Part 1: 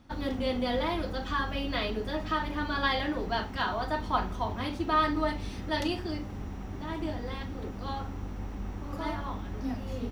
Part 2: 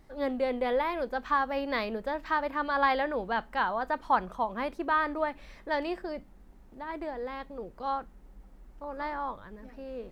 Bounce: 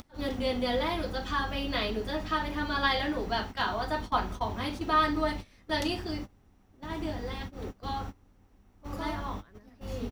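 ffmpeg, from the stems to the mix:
-filter_complex "[0:a]acompressor=mode=upward:threshold=0.0158:ratio=2.5,volume=0.891[s0];[1:a]bandreject=f=920:w=7.6,adelay=18,volume=0.266,asplit=2[s1][s2];[s2]apad=whole_len=446112[s3];[s0][s3]sidechaingate=range=0.0708:threshold=0.00224:ratio=16:detection=peak[s4];[s4][s1]amix=inputs=2:normalize=0,highshelf=f=3800:g=6"

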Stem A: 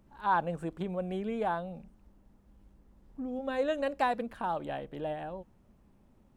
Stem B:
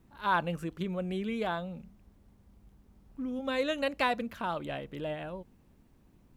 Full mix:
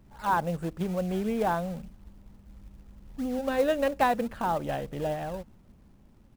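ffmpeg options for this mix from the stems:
-filter_complex "[0:a]bass=f=250:g=5,treble=f=4000:g=-3,dynaudnorm=f=210:g=11:m=1.41,volume=1.19[s0];[1:a]acompressor=threshold=0.00891:ratio=2.5,acrusher=samples=28:mix=1:aa=0.000001:lfo=1:lforange=28:lforate=3.6,adelay=1.1,volume=0.668[s1];[s0][s1]amix=inputs=2:normalize=0,acrusher=bits=6:mode=log:mix=0:aa=0.000001"

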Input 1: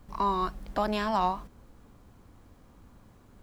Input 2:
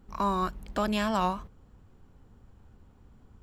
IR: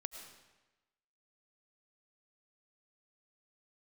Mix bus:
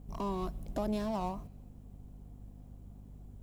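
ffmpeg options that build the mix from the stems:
-filter_complex "[0:a]equalizer=f=4700:t=o:w=1.3:g=-8,volume=0.708,asplit=2[s0][s1];[1:a]equalizer=f=700:t=o:w=0.37:g=14,bandreject=f=4400:w=12,volume=26.6,asoftclip=hard,volume=0.0376,volume=0.668,asplit=2[s2][s3];[s3]volume=0.133[s4];[s1]apad=whole_len=150994[s5];[s2][s5]sidechaincompress=threshold=0.0141:ratio=8:attack=36:release=368[s6];[2:a]atrim=start_sample=2205[s7];[s4][s7]afir=irnorm=-1:irlink=0[s8];[s0][s6][s8]amix=inputs=3:normalize=0,equalizer=f=1400:t=o:w=1.8:g=-14,aeval=exprs='val(0)+0.00355*(sin(2*PI*50*n/s)+sin(2*PI*2*50*n/s)/2+sin(2*PI*3*50*n/s)/3+sin(2*PI*4*50*n/s)/4+sin(2*PI*5*50*n/s)/5)':c=same"

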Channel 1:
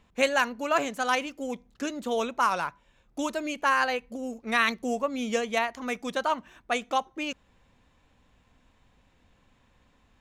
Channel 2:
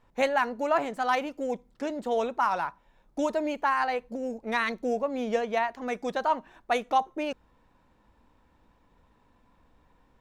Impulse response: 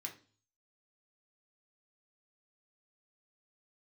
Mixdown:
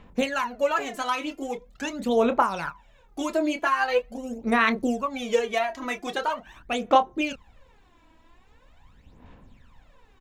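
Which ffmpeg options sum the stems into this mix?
-filter_complex "[0:a]acompressor=threshold=0.0501:ratio=6,volume=1.26[s0];[1:a]acompressor=threshold=0.0251:ratio=6,volume=-1,adelay=28,volume=0.841[s1];[s0][s1]amix=inputs=2:normalize=0,equalizer=f=8700:w=0.54:g=-4,aphaser=in_gain=1:out_gain=1:delay=3.1:decay=0.7:speed=0.43:type=sinusoidal"

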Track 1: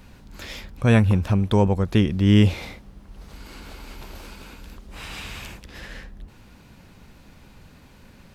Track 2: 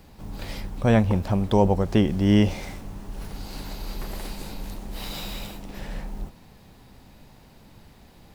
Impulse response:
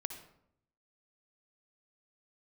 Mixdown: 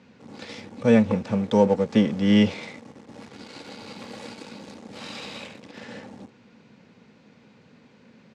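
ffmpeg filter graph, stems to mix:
-filter_complex "[0:a]lowpass=6100,volume=0.531[s0];[1:a]aecho=1:1:3.6:0.85,aeval=exprs='sgn(val(0))*max(abs(val(0))-0.0188,0)':c=same,volume=-1,volume=0.668[s1];[s0][s1]amix=inputs=2:normalize=0,highpass=f=120:w=0.5412,highpass=f=120:w=1.3066,equalizer=f=230:t=q:w=4:g=8,equalizer=f=470:t=q:w=4:g=9,equalizer=f=2100:t=q:w=4:g=3,lowpass=f=7900:w=0.5412,lowpass=f=7900:w=1.3066"

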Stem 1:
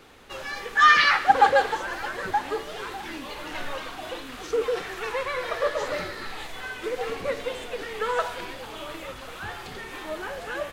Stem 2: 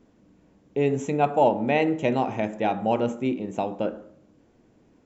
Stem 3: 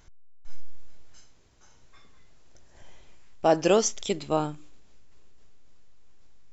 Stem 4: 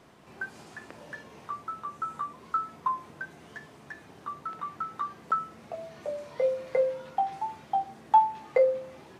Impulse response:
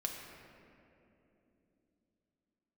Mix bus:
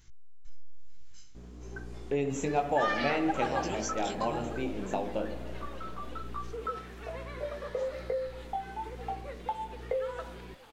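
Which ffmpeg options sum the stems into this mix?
-filter_complex "[0:a]adelay=2000,volume=0.158[s0];[1:a]bass=f=250:g=-4,treble=f=4000:g=5,adelay=1350,volume=1.33,asplit=2[s1][s2];[s2]volume=0.158[s3];[2:a]equalizer=f=670:t=o:w=1.6:g=-14.5,acompressor=threshold=0.0178:ratio=5,volume=1.41,asplit=2[s4][s5];[3:a]equalizer=f=400:t=o:w=0.7:g=14,aeval=exprs='val(0)+0.0141*(sin(2*PI*60*n/s)+sin(2*PI*2*60*n/s)/2+sin(2*PI*3*60*n/s)/3+sin(2*PI*4*60*n/s)/4+sin(2*PI*5*60*n/s)/5)':c=same,adelay=1350,volume=0.562[s6];[s5]apad=whole_len=282470[s7];[s1][s7]sidechaincompress=threshold=0.00447:ratio=8:attack=16:release=288[s8];[s8][s4][s6]amix=inputs=3:normalize=0,flanger=delay=17:depth=5.2:speed=1.1,acompressor=threshold=0.0316:ratio=6,volume=1[s9];[4:a]atrim=start_sample=2205[s10];[s3][s10]afir=irnorm=-1:irlink=0[s11];[s0][s9][s11]amix=inputs=3:normalize=0"

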